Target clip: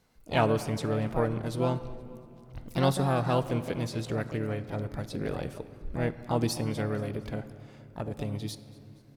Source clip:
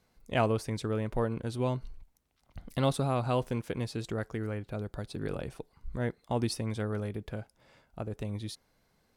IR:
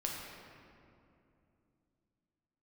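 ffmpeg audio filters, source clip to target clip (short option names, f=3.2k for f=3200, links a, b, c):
-filter_complex "[0:a]asplit=2[a][b];[b]asetrate=58866,aresample=44100,atempo=0.749154,volume=-7dB[c];[a][c]amix=inputs=2:normalize=0,aecho=1:1:235|470|705:0.0708|0.0368|0.0191,asplit=2[d][e];[1:a]atrim=start_sample=2205[f];[e][f]afir=irnorm=-1:irlink=0,volume=-11.5dB[g];[d][g]amix=inputs=2:normalize=0"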